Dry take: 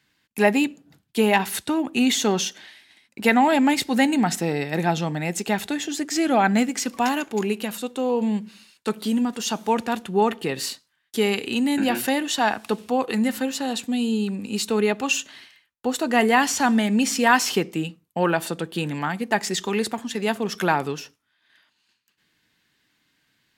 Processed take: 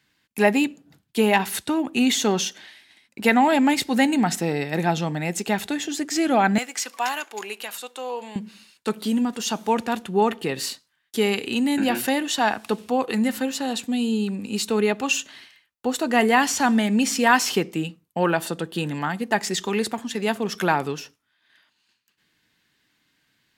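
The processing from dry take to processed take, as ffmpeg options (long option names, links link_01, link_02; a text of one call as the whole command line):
ffmpeg -i in.wav -filter_complex "[0:a]asettb=1/sr,asplit=3[link_01][link_02][link_03];[link_01]atrim=end=6.584[link_04];[link_02]atrim=start=6.58:end=8.36,asetpts=PTS-STARTPTS,afade=type=in:duration=0.004:curve=qsin,afade=type=out:start_time=1.776:duration=0.004:curve=qsin,highpass=740[link_05];[link_03]atrim=start=8.356[link_06];[link_04][link_05]acrossfade=duration=0.004:curve1=hsin:curve2=qsin[link_07];[link_07][link_06]acrossfade=duration=0.004:curve1=qsin:curve2=hsin,asettb=1/sr,asplit=3[link_08][link_09][link_10];[link_08]atrim=end=18.414[link_11];[link_09]atrim=start=18.41:end=19.35,asetpts=PTS-STARTPTS,afade=type=in:duration=0.004:curve=qsin,afade=type=out:start_time=0.936:duration=0.004:curve=qsin,bandreject=frequency=2300:width=12[link_12];[link_10]atrim=start=19.346[link_13];[link_11][link_12]acrossfade=duration=0.004:curve1=hsin:curve2=qsin[link_14];[link_14][link_13]acrossfade=duration=0.004:curve1=qsin:curve2=hsin" out.wav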